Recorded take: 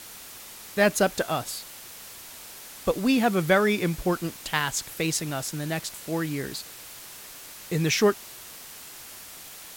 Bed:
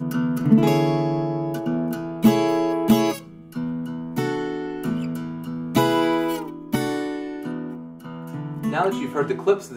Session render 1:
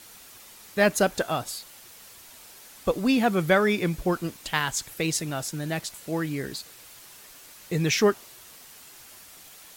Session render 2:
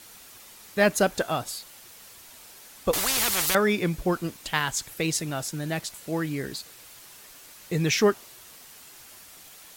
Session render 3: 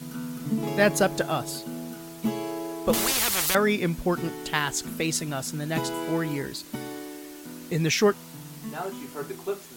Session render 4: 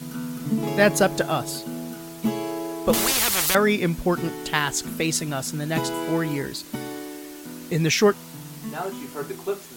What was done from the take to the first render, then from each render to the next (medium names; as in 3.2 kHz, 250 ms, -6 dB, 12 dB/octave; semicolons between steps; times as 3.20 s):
noise reduction 6 dB, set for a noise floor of -44 dBFS
2.93–3.55 s: spectrum-flattening compressor 10:1
add bed -12 dB
trim +3 dB